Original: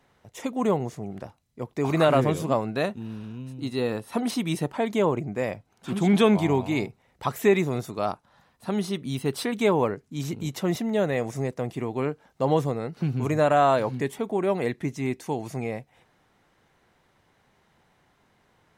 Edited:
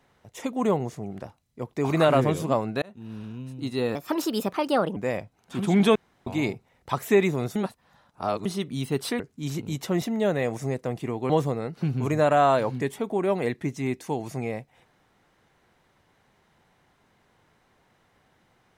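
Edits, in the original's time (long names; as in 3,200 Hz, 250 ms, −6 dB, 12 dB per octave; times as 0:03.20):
0:02.82–0:03.20: fade in linear
0:03.95–0:05.30: play speed 133%
0:06.29–0:06.60: fill with room tone
0:07.89–0:08.79: reverse
0:09.53–0:09.93: remove
0:12.03–0:12.49: remove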